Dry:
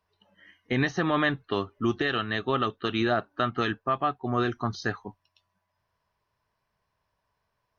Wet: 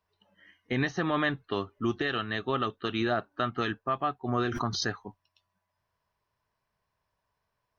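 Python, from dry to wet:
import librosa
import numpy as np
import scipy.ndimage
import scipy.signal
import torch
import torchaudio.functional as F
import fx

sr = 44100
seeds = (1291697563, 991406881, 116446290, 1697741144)

y = fx.pre_swell(x, sr, db_per_s=35.0, at=(4.28, 4.87))
y = y * librosa.db_to_amplitude(-3.0)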